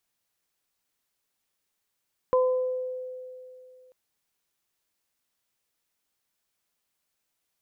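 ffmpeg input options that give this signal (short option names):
-f lavfi -i "aevalsrc='0.126*pow(10,-3*t/2.7)*sin(2*PI*509*t)+0.0631*pow(10,-3*t/0.73)*sin(2*PI*1018*t)':d=1.59:s=44100"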